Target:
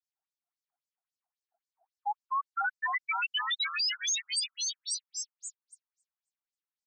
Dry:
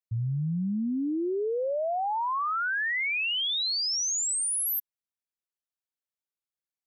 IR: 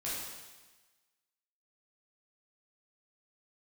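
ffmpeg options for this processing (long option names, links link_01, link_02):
-filter_complex "[0:a]aecho=1:1:580|928|1137|1262|1337:0.631|0.398|0.251|0.158|0.1,asplit=2[link_01][link_02];[1:a]atrim=start_sample=2205,highshelf=frequency=7900:gain=6.5[link_03];[link_02][link_03]afir=irnorm=-1:irlink=0,volume=-25dB[link_04];[link_01][link_04]amix=inputs=2:normalize=0,afftfilt=real='re*between(b*sr/1024,970*pow(6300/970,0.5+0.5*sin(2*PI*3.7*pts/sr))/1.41,970*pow(6300/970,0.5+0.5*sin(2*PI*3.7*pts/sr))*1.41)':imag='im*between(b*sr/1024,970*pow(6300/970,0.5+0.5*sin(2*PI*3.7*pts/sr))/1.41,970*pow(6300/970,0.5+0.5*sin(2*PI*3.7*pts/sr))*1.41)':win_size=1024:overlap=0.75"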